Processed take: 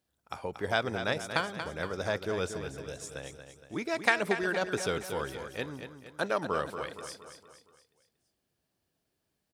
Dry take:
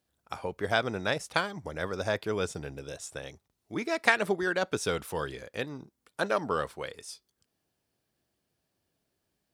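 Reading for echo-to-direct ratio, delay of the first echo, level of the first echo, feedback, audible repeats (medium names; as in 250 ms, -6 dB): -8.0 dB, 233 ms, -9.0 dB, 48%, 5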